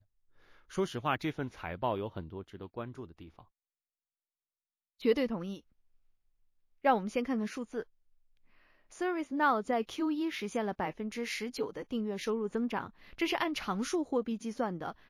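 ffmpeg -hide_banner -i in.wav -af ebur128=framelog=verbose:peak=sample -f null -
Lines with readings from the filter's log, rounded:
Integrated loudness:
  I:         -34.1 LUFS
  Threshold: -44.9 LUFS
Loudness range:
  LRA:         5.8 LU
  Threshold: -55.8 LUFS
  LRA low:   -39.4 LUFS
  LRA high:  -33.7 LUFS
Sample peak:
  Peak:      -15.3 dBFS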